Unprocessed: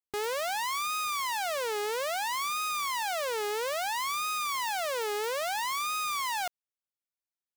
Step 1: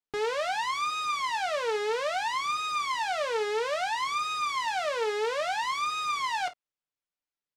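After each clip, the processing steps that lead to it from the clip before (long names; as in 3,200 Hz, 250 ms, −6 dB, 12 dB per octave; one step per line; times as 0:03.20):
high-frequency loss of the air 93 metres
comb filter 6.7 ms, depth 53%
on a send: ambience of single reflections 28 ms −13.5 dB, 51 ms −16.5 dB
on the sum: level +1.5 dB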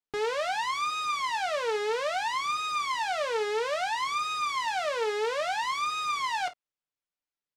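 no processing that can be heard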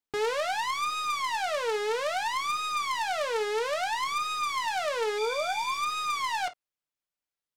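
stylus tracing distortion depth 0.052 ms
speech leveller
healed spectral selection 0:05.21–0:05.77, 1,600–5,400 Hz after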